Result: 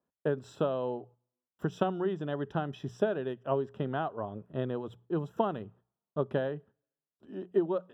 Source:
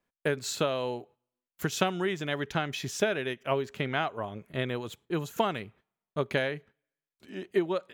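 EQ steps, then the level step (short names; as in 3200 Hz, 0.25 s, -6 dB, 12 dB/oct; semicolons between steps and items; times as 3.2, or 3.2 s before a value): running mean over 20 samples; HPF 75 Hz; notches 60/120/180 Hz; 0.0 dB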